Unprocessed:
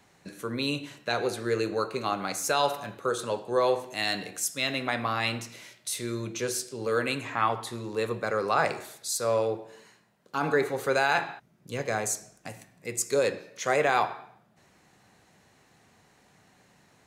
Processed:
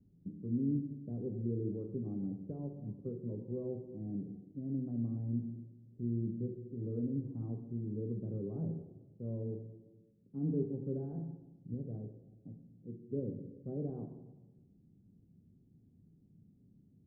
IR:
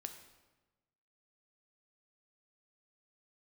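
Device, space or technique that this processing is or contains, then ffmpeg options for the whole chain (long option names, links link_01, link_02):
next room: -filter_complex "[0:a]asettb=1/sr,asplit=3[link_01][link_02][link_03];[link_01]atrim=end=11.744[link_04];[link_02]atrim=start=11.74:end=13.09,asetpts=PTS-STARTPTS,afade=type=in:duration=0.004:curve=qsin,afade=type=out:start_time=1.346:duration=0.004:curve=qsin,lowshelf=frequency=190:gain=-8[link_05];[link_03]atrim=start=13.086[link_06];[link_04][link_05]acrossfade=duration=0.004:curve1=hsin:curve2=qsin[link_07];[link_07][link_06]acrossfade=duration=0.004:curve1=qsin:curve2=hsin,lowpass=frequency=270:width=0.5412,lowpass=frequency=270:width=1.3066[link_08];[1:a]atrim=start_sample=2205[link_09];[link_08][link_09]afir=irnorm=-1:irlink=0,volume=5.5dB"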